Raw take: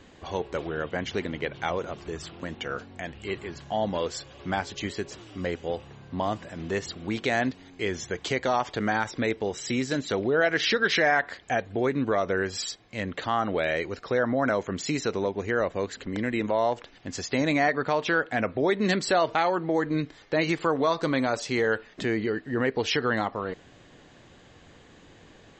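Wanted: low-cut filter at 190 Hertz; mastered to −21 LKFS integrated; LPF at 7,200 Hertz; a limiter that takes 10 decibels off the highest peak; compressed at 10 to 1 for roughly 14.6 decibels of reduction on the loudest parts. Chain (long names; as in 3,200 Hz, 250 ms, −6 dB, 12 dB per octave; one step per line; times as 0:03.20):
high-pass filter 190 Hz
low-pass filter 7,200 Hz
downward compressor 10 to 1, threshold −33 dBFS
level +18.5 dB
brickwall limiter −9.5 dBFS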